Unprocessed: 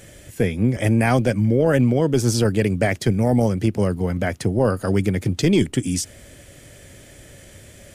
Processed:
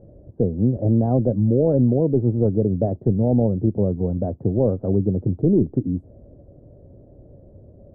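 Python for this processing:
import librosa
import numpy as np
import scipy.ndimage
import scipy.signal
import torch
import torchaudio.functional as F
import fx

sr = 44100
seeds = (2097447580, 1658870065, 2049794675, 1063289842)

y = scipy.signal.sosfilt(scipy.signal.cheby2(4, 60, 2200.0, 'lowpass', fs=sr, output='sos'), x)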